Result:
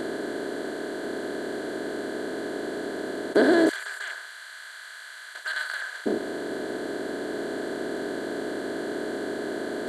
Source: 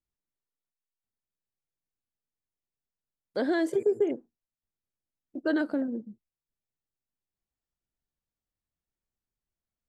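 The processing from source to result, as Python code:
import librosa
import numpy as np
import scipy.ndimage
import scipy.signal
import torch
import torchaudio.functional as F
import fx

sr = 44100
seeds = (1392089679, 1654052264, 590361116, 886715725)

y = fx.bin_compress(x, sr, power=0.2)
y = fx.highpass(y, sr, hz=1300.0, slope=24, at=(3.69, 6.06))
y = F.gain(torch.from_numpy(y), 2.5).numpy()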